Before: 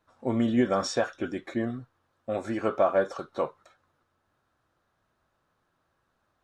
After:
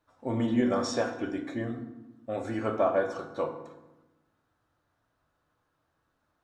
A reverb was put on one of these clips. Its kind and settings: FDN reverb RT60 1 s, low-frequency decay 1.5×, high-frequency decay 0.6×, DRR 4 dB; trim -3.5 dB

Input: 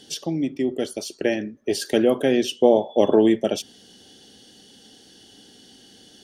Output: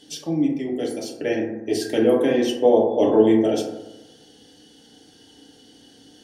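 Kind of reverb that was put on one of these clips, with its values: FDN reverb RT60 1 s, low-frequency decay 1×, high-frequency decay 0.3×, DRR -3 dB; trim -5 dB

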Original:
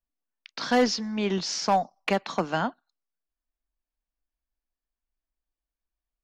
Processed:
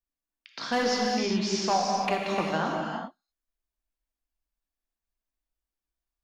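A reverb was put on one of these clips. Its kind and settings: gated-style reverb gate 430 ms flat, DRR -1.5 dB; trim -4 dB

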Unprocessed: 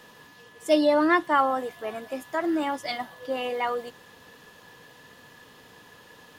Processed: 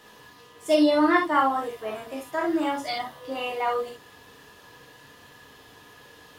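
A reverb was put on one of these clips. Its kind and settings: gated-style reverb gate 90 ms flat, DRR -1 dB; trim -2.5 dB

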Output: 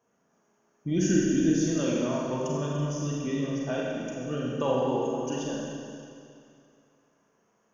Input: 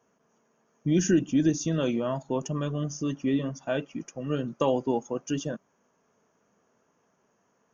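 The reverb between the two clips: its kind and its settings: Schroeder reverb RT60 2.4 s, combs from 32 ms, DRR -4 dB; trim -5 dB

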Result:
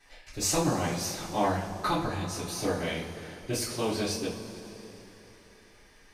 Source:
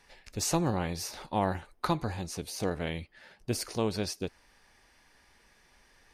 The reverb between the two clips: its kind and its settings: two-slope reverb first 0.35 s, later 3.7 s, from -18 dB, DRR -10 dB; trim -6.5 dB

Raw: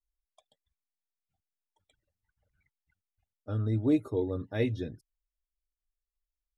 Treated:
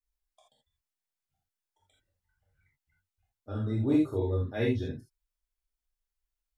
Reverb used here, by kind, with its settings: gated-style reverb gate 100 ms flat, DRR -4 dB; trim -3.5 dB

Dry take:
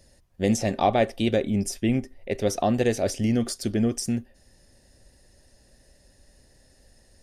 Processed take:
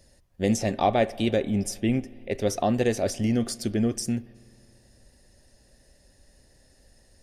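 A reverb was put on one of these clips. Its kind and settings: spring tank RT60 2.6 s, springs 57 ms, chirp 60 ms, DRR 20 dB; trim -1 dB

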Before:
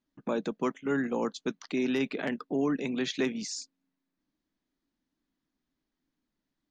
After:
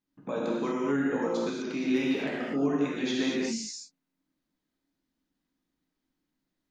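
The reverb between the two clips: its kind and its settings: gated-style reverb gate 270 ms flat, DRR -5.5 dB; trim -5 dB

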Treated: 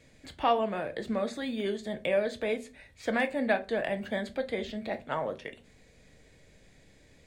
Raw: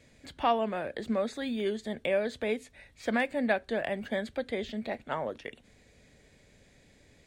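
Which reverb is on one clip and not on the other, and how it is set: simulated room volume 140 m³, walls furnished, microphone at 0.58 m

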